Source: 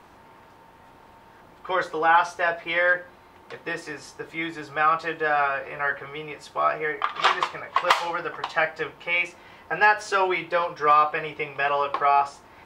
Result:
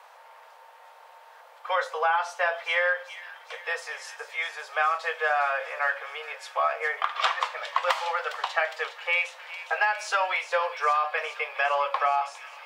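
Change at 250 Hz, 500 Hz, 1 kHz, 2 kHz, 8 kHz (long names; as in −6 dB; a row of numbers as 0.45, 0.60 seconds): below −30 dB, −3.5 dB, −4.0 dB, −2.0 dB, −0.5 dB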